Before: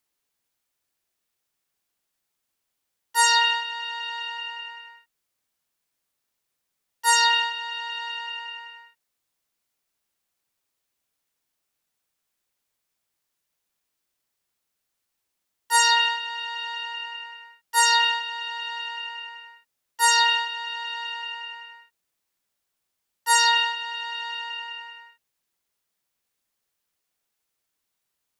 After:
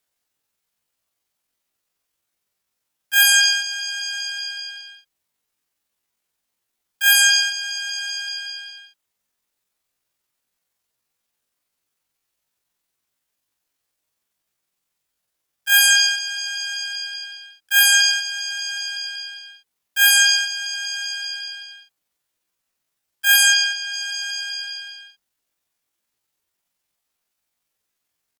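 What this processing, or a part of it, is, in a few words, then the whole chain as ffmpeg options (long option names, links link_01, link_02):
chipmunk voice: -filter_complex "[0:a]asplit=3[link_01][link_02][link_03];[link_01]afade=type=out:start_time=23.52:duration=0.02[link_04];[link_02]bass=frequency=250:gain=-13,treble=frequency=4000:gain=-8,afade=type=in:start_time=23.52:duration=0.02,afade=type=out:start_time=23.93:duration=0.02[link_05];[link_03]afade=type=in:start_time=23.93:duration=0.02[link_06];[link_04][link_05][link_06]amix=inputs=3:normalize=0,asetrate=76340,aresample=44100,atempo=0.577676,volume=5dB"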